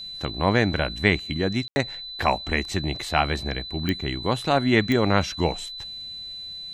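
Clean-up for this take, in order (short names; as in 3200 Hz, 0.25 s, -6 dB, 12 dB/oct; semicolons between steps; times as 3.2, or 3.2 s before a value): de-click; notch 4000 Hz, Q 30; room tone fill 1.68–1.76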